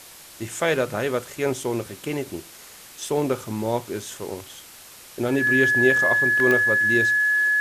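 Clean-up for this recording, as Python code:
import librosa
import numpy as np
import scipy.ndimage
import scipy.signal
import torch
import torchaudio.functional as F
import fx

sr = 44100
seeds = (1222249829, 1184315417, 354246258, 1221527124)

y = fx.fix_declick_ar(x, sr, threshold=10.0)
y = fx.notch(y, sr, hz=1700.0, q=30.0)
y = fx.fix_interpolate(y, sr, at_s=(3.8, 6.4), length_ms=1.3)
y = fx.noise_reduce(y, sr, print_start_s=4.62, print_end_s=5.12, reduce_db=23.0)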